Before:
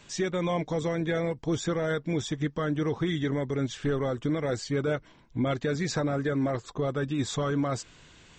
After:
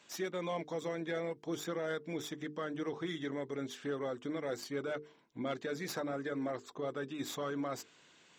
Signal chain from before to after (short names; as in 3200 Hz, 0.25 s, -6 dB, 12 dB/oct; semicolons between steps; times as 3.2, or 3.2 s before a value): tracing distortion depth 0.051 ms; HPF 240 Hz 12 dB/oct; notches 50/100/150/200/250/300/350/400/450 Hz; gain -7.5 dB